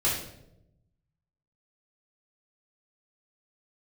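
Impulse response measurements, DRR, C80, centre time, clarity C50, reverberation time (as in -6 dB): -9.0 dB, 7.0 dB, 45 ms, 3.5 dB, 0.85 s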